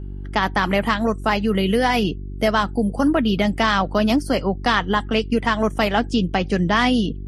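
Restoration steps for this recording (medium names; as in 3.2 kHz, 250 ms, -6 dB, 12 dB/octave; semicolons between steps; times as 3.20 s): de-hum 48.3 Hz, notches 8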